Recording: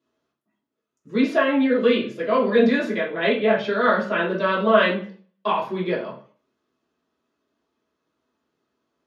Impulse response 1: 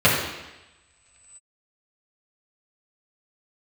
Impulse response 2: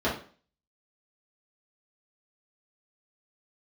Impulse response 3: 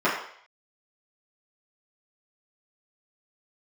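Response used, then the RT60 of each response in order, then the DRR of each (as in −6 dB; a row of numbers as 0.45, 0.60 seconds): 2; 1.1, 0.45, 0.60 seconds; −8.5, −8.5, −11.0 decibels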